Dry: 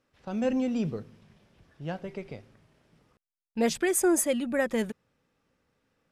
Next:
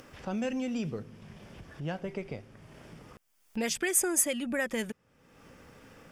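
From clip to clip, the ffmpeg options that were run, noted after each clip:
-filter_complex "[0:a]acrossover=split=1600[a][b];[a]acompressor=threshold=-33dB:ratio=6[c];[c][b]amix=inputs=2:normalize=0,equalizer=f=4k:w=7:g=-9,acompressor=mode=upward:threshold=-40dB:ratio=2.5,volume=2.5dB"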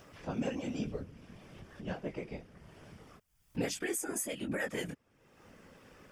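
-af "flanger=delay=17:depth=6:speed=1.1,alimiter=level_in=0.5dB:limit=-24dB:level=0:latency=1:release=244,volume=-0.5dB,afftfilt=real='hypot(re,im)*cos(2*PI*random(0))':imag='hypot(re,im)*sin(2*PI*random(1))':win_size=512:overlap=0.75,volume=5.5dB"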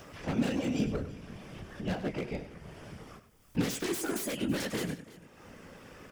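-filter_complex "[0:a]acrossover=split=370[a][b];[b]aeval=exprs='0.0112*(abs(mod(val(0)/0.0112+3,4)-2)-1)':c=same[c];[a][c]amix=inputs=2:normalize=0,aecho=1:1:99|331:0.237|0.112,volume=6.5dB"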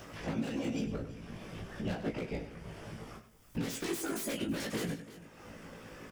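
-filter_complex "[0:a]alimiter=level_in=3dB:limit=-24dB:level=0:latency=1:release=452,volume=-3dB,asplit=2[a][b];[b]adelay=18,volume=-4.5dB[c];[a][c]amix=inputs=2:normalize=0"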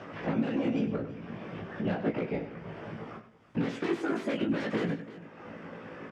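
-af "highpass=140,lowpass=2.2k,volume=6.5dB"

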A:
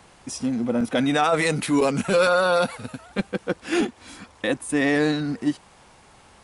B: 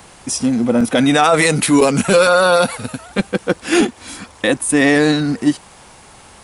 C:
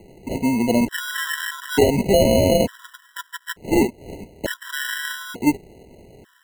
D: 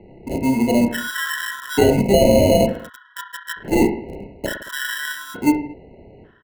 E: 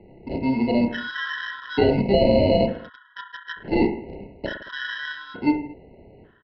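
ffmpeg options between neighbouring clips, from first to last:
-af "highshelf=f=8.1k:g=10,alimiter=level_in=9.5dB:limit=-1dB:release=50:level=0:latency=1,volume=-1dB"
-af "acrusher=samples=37:mix=1:aa=0.000001,equalizer=f=400:t=o:w=0.33:g=5,equalizer=f=800:t=o:w=0.33:g=-5,equalizer=f=5k:t=o:w=0.33:g=-6,afftfilt=real='re*gt(sin(2*PI*0.56*pts/sr)*(1-2*mod(floor(b*sr/1024/990),2)),0)':imag='im*gt(sin(2*PI*0.56*pts/sr)*(1-2*mod(floor(b*sr/1024/990),2)),0)':win_size=1024:overlap=0.75,volume=-3.5dB"
-filter_complex "[0:a]acrossover=split=2900[a][b];[a]aecho=1:1:30|66|109.2|161|223.2:0.631|0.398|0.251|0.158|0.1[c];[b]acrusher=bits=5:mix=0:aa=0.5[d];[c][d]amix=inputs=2:normalize=0"
-af "aresample=11025,aresample=44100,volume=-4dB"

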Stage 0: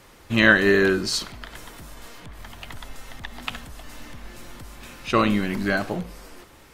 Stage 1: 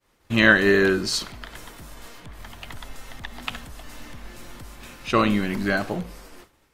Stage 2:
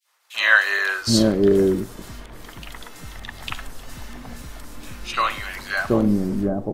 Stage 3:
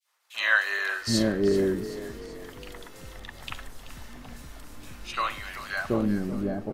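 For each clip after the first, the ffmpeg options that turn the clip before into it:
-af "agate=range=-33dB:threshold=-40dB:ratio=3:detection=peak"
-filter_complex "[0:a]acrossover=split=740|2600[a][b][c];[b]adelay=40[d];[a]adelay=770[e];[e][d][c]amix=inputs=3:normalize=0,volume=3.5dB"
-filter_complex "[0:a]asplit=6[a][b][c][d][e][f];[b]adelay=382,afreqshift=32,volume=-14dB[g];[c]adelay=764,afreqshift=64,volume=-19.7dB[h];[d]adelay=1146,afreqshift=96,volume=-25.4dB[i];[e]adelay=1528,afreqshift=128,volume=-31dB[j];[f]adelay=1910,afreqshift=160,volume=-36.7dB[k];[a][g][h][i][j][k]amix=inputs=6:normalize=0,volume=-7dB"

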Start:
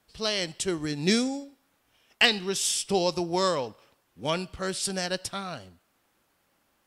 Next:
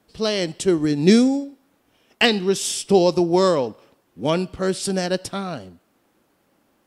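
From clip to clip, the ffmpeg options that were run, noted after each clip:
-af "equalizer=f=290:t=o:w=2.6:g=10.5,volume=1.5dB"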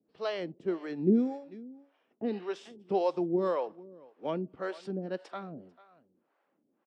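-filter_complex "[0:a]highpass=220,lowpass=2k,aecho=1:1:443:0.0944,acrossover=split=450[a][b];[a]aeval=exprs='val(0)*(1-1/2+1/2*cos(2*PI*1.8*n/s))':c=same[c];[b]aeval=exprs='val(0)*(1-1/2-1/2*cos(2*PI*1.8*n/s))':c=same[d];[c][d]amix=inputs=2:normalize=0,volume=-6dB"

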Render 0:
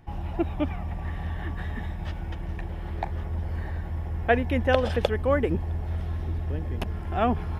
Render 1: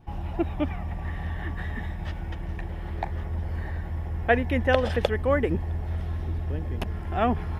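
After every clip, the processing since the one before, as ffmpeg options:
-af "adynamicequalizer=threshold=0.00282:dfrequency=1900:dqfactor=6.1:tfrequency=1900:tqfactor=6.1:attack=5:release=100:ratio=0.375:range=2.5:mode=boostabove:tftype=bell"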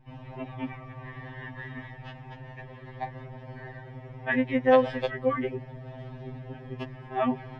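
-af "lowpass=3.6k,bandreject=f=1.4k:w=10,afftfilt=real='re*2.45*eq(mod(b,6),0)':imag='im*2.45*eq(mod(b,6),0)':win_size=2048:overlap=0.75"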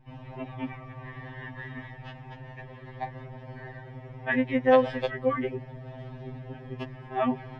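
-af anull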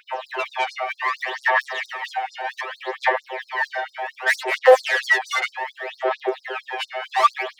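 -filter_complex "[0:a]asplit=2[a][b];[b]highpass=f=720:p=1,volume=33dB,asoftclip=type=tanh:threshold=-10dB[c];[a][c]amix=inputs=2:normalize=0,lowpass=f=2.5k:p=1,volume=-6dB,aphaser=in_gain=1:out_gain=1:delay=1.4:decay=0.73:speed=0.65:type=sinusoidal,afftfilt=real='re*gte(b*sr/1024,310*pow(4200/310,0.5+0.5*sin(2*PI*4.4*pts/sr)))':imag='im*gte(b*sr/1024,310*pow(4200/310,0.5+0.5*sin(2*PI*4.4*pts/sr)))':win_size=1024:overlap=0.75,volume=-1.5dB"

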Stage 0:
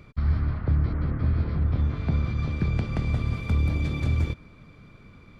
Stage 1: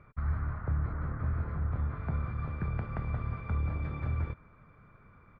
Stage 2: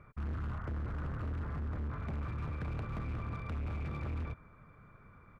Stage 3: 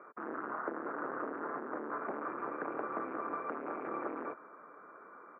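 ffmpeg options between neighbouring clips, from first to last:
-af "firequalizer=gain_entry='entry(120,0);entry(280,-5);entry(420,0);entry(950,6);entry(1400,8);entry(3100,-12);entry(6800,-26)':delay=0.05:min_phase=1,volume=-8dB"
-af "volume=35dB,asoftclip=hard,volume=-35dB"
-af "asuperpass=centerf=710:order=8:qfactor=0.53,volume=10dB"

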